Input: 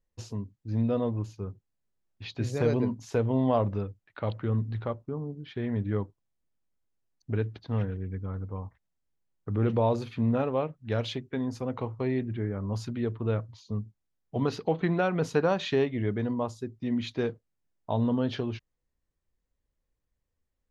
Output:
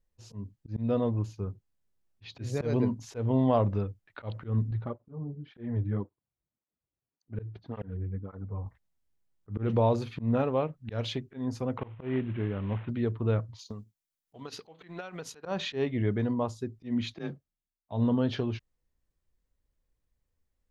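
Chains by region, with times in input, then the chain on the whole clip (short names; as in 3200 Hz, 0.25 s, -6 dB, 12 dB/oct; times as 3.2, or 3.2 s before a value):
4.71–8.66 high shelf 2000 Hz -10.5 dB + tape flanging out of phase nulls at 1.8 Hz, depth 5 ms
11.78–12.89 CVSD 16 kbps + low shelf 71 Hz -5.5 dB
13.59–15.46 tilt +3 dB/oct + compressor 4:1, threshold -39 dBFS + transient shaper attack +6 dB, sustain -6 dB
17.14–17.92 frequency shift +28 Hz + notch comb 490 Hz + three-band expander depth 100%
whole clip: low shelf 110 Hz +4 dB; auto swell 0.143 s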